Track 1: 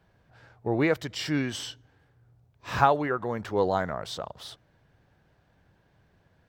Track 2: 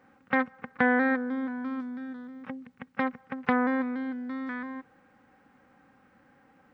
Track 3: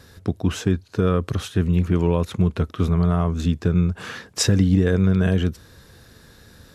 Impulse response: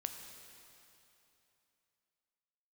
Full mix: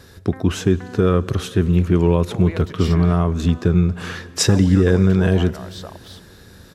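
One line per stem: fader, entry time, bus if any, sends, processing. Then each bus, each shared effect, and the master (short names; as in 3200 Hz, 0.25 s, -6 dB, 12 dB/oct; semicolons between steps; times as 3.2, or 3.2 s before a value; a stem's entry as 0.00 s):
0.0 dB, 1.65 s, muted 3.13–4.49, no send, echo send -21 dB, compressor, threshold -29 dBFS, peak gain reduction 14 dB
-15.0 dB, 0.00 s, no send, no echo send, treble ducked by the level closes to 1400 Hz
+0.5 dB, 0.00 s, send -8.5 dB, no echo send, bell 370 Hz +5 dB 0.29 oct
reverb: on, RT60 3.0 s, pre-delay 7 ms
echo: echo 0.261 s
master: dry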